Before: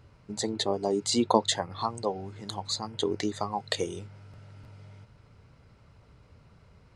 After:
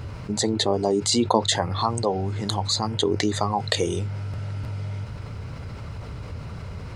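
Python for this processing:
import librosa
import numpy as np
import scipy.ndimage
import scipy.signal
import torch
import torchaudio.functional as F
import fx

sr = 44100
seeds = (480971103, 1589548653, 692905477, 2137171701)

y = fx.peak_eq(x, sr, hz=92.0, db=5.0, octaves=0.78)
y = fx.env_flatten(y, sr, amount_pct=50)
y = y * 10.0 ** (1.0 / 20.0)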